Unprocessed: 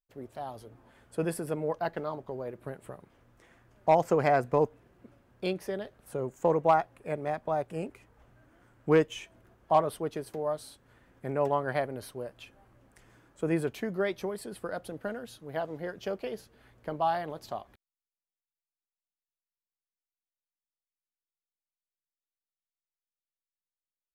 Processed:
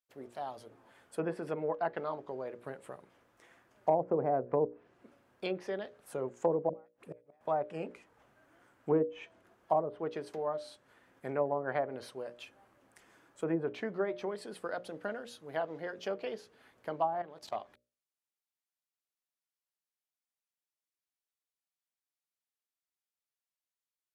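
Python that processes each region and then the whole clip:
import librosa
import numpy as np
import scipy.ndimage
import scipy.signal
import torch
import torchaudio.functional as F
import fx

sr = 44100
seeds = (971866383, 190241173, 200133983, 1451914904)

y = fx.chain(x, sr, fx.dispersion(late='highs', ms=67.0, hz=480.0),
    fx.gate_flip(shuts_db=-28.0, range_db=-38), at=(6.69, 7.41))
y = fx.chain(y, sr, fx.leveller(passes=1),
    fx.level_steps(step_db=16), at=(17.13, 17.56))
y = fx.env_lowpass_down(y, sr, base_hz=560.0, full_db=-22.5)
y = fx.highpass(y, sr, hz=340.0, slope=6)
y = fx.hum_notches(y, sr, base_hz=60, count=10)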